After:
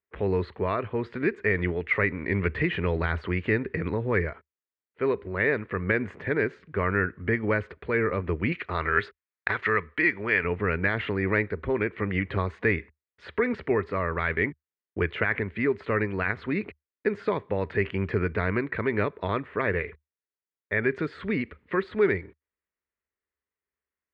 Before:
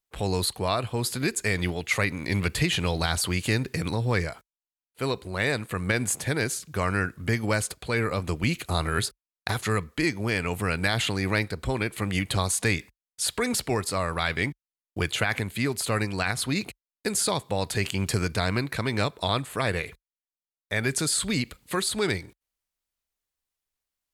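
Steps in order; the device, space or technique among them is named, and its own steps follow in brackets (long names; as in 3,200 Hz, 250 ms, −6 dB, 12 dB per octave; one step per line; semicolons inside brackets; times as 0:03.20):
bass cabinet (loudspeaker in its box 72–2,200 Hz, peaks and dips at 75 Hz +6 dB, 130 Hz −9 dB, 410 Hz +7 dB, 760 Hz −8 dB, 1,900 Hz +5 dB)
0:08.52–0:10.44: tilt shelving filter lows −7 dB, about 720 Hz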